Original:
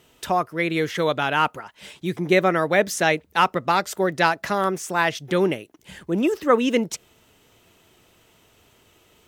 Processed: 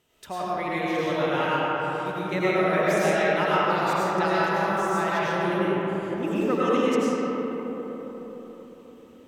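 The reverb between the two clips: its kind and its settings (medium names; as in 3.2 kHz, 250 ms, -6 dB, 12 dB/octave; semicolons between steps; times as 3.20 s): algorithmic reverb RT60 4.7 s, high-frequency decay 0.35×, pre-delay 60 ms, DRR -9.5 dB; trim -12.5 dB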